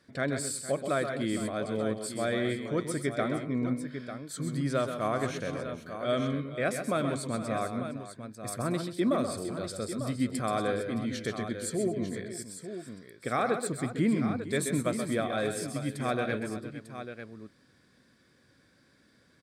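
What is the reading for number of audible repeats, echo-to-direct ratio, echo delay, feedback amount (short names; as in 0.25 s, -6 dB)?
4, -5.0 dB, 0.129 s, no steady repeat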